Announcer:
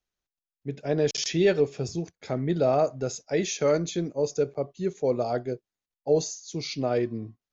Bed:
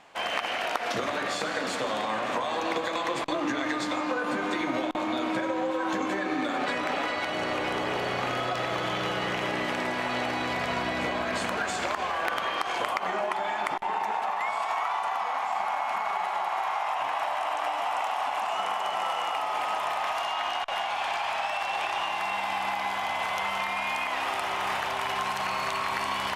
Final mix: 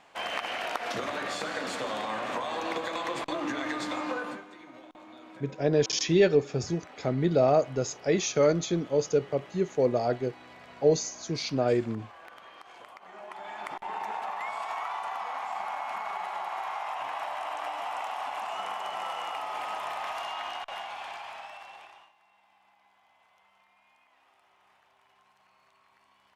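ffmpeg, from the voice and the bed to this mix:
-filter_complex "[0:a]adelay=4750,volume=1.06[s0];[1:a]volume=3.76,afade=t=out:st=4.16:d=0.29:silence=0.141254,afade=t=in:st=13.07:d=0.97:silence=0.177828,afade=t=out:st=20.28:d=1.85:silence=0.0316228[s1];[s0][s1]amix=inputs=2:normalize=0"

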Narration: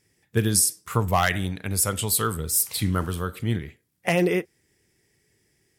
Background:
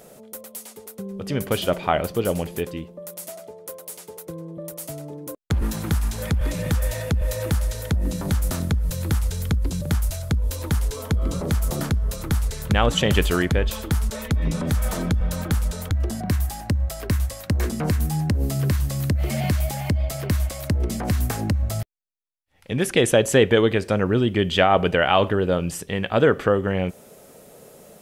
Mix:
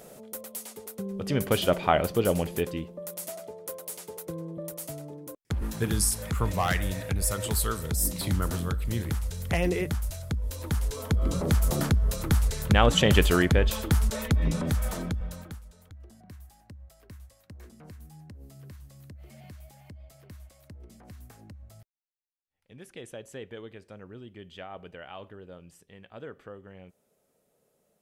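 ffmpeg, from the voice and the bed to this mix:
-filter_complex "[0:a]adelay=5450,volume=0.501[s0];[1:a]volume=1.88,afade=t=out:st=4.43:d=0.9:silence=0.473151,afade=t=in:st=10.5:d=1.06:silence=0.446684,afade=t=out:st=14.22:d=1.4:silence=0.0630957[s1];[s0][s1]amix=inputs=2:normalize=0"

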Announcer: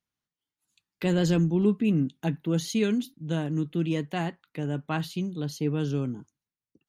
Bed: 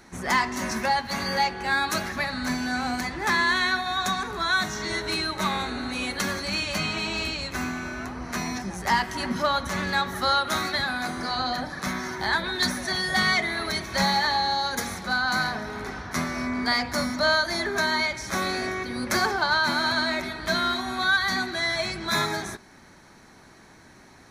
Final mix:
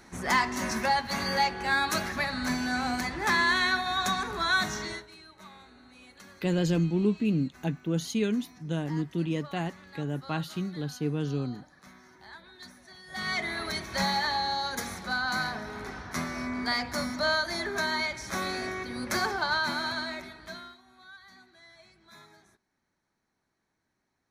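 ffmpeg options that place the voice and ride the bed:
-filter_complex "[0:a]adelay=5400,volume=0.75[s0];[1:a]volume=6.68,afade=t=out:st=4.74:d=0.33:silence=0.0841395,afade=t=in:st=13.06:d=0.42:silence=0.11885,afade=t=out:st=19.55:d=1.22:silence=0.0668344[s1];[s0][s1]amix=inputs=2:normalize=0"

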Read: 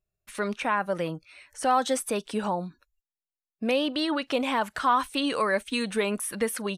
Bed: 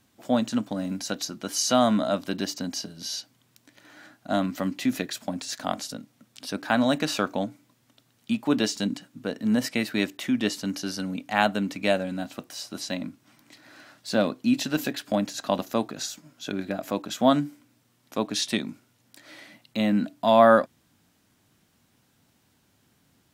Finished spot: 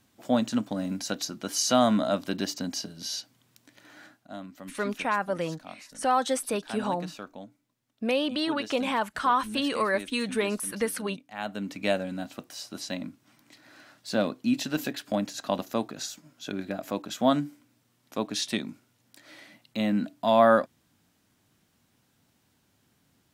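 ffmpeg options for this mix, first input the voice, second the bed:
-filter_complex "[0:a]adelay=4400,volume=0.891[s0];[1:a]volume=3.76,afade=t=out:st=4.03:d=0.26:silence=0.188365,afade=t=in:st=11.37:d=0.45:silence=0.237137[s1];[s0][s1]amix=inputs=2:normalize=0"

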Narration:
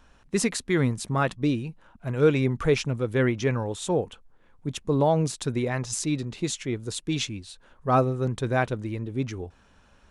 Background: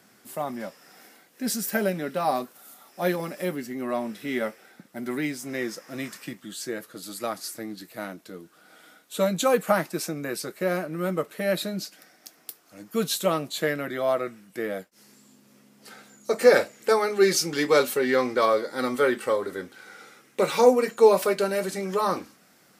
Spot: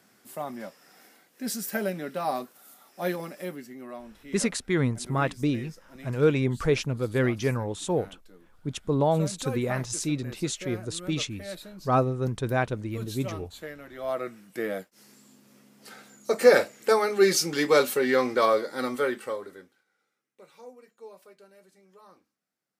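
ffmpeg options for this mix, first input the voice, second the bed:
-filter_complex "[0:a]adelay=4000,volume=0.841[s0];[1:a]volume=2.99,afade=t=out:st=3.12:d=0.9:silence=0.316228,afade=t=in:st=13.92:d=0.48:silence=0.211349,afade=t=out:st=18.53:d=1.31:silence=0.0354813[s1];[s0][s1]amix=inputs=2:normalize=0"

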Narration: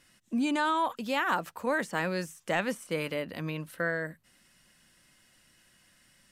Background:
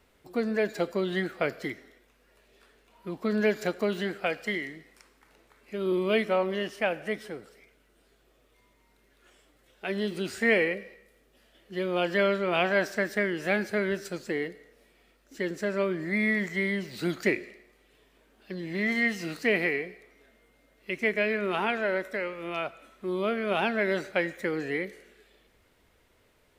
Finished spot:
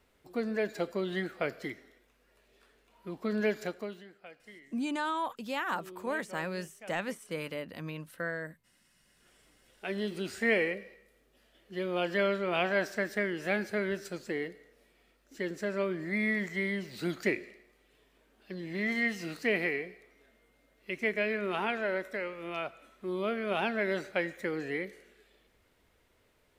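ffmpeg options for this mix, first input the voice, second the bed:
-filter_complex "[0:a]adelay=4400,volume=0.562[s0];[1:a]volume=4.47,afade=t=out:st=3.53:d=0.51:silence=0.141254,afade=t=in:st=8.94:d=0.5:silence=0.133352[s1];[s0][s1]amix=inputs=2:normalize=0"

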